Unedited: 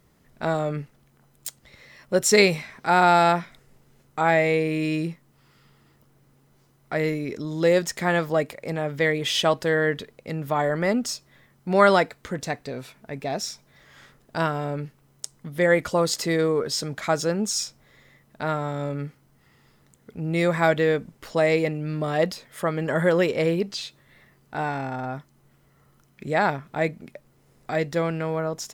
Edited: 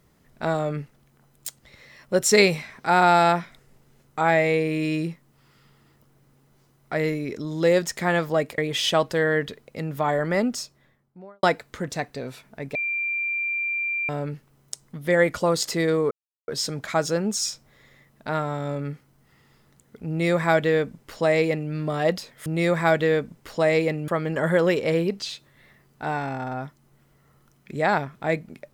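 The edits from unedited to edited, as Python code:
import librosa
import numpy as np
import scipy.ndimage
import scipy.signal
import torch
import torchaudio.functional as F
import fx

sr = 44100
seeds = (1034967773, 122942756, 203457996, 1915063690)

y = fx.studio_fade_out(x, sr, start_s=10.92, length_s=1.02)
y = fx.edit(y, sr, fx.cut(start_s=8.58, length_s=0.51),
    fx.bleep(start_s=13.26, length_s=1.34, hz=2370.0, db=-23.5),
    fx.insert_silence(at_s=16.62, length_s=0.37),
    fx.duplicate(start_s=20.23, length_s=1.62, to_s=22.6), tone=tone)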